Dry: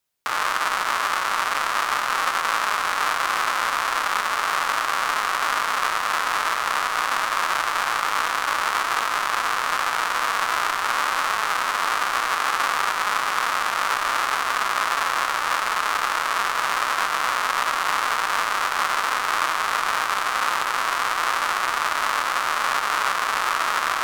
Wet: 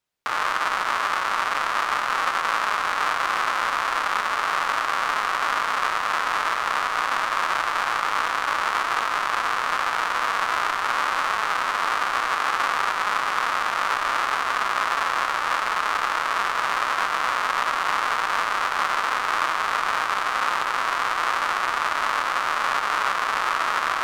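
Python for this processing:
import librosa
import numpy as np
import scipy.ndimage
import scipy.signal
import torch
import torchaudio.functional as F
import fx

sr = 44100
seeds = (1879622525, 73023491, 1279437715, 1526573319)

y = fx.lowpass(x, sr, hz=3800.0, slope=6)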